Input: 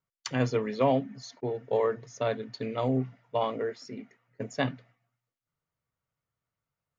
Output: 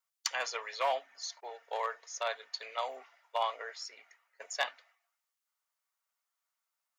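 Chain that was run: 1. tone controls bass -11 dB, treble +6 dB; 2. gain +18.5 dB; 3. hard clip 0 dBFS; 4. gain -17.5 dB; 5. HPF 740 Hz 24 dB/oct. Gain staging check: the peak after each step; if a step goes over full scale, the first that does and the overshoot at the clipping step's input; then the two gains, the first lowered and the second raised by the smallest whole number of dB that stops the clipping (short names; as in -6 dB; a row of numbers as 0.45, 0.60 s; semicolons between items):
-12.0, +6.5, 0.0, -17.5, -15.0 dBFS; step 2, 6.5 dB; step 2 +11.5 dB, step 4 -10.5 dB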